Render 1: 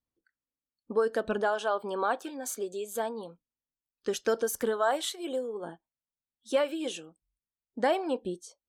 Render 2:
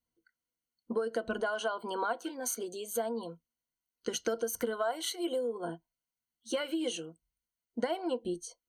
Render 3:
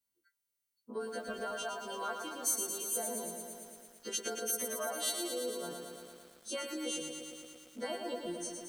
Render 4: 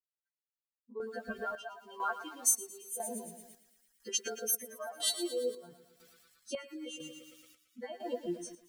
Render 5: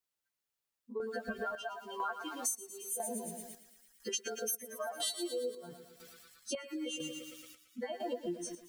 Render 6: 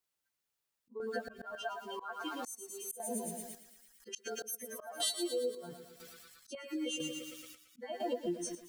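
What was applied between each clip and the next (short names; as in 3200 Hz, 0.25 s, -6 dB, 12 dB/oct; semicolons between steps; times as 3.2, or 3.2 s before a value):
ripple EQ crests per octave 1.9, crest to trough 13 dB; compressor 6:1, threshold -29 dBFS, peak gain reduction 11 dB
frequency quantiser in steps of 2 st; lo-fi delay 0.113 s, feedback 80%, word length 9-bit, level -5.5 dB; gain -6.5 dB
per-bin expansion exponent 2; chopper 1 Hz, depth 60%, duty 55%; gain +6.5 dB
compressor 4:1, threshold -42 dBFS, peak gain reduction 16.5 dB; gain +6.5 dB
auto swell 0.208 s; gain +2 dB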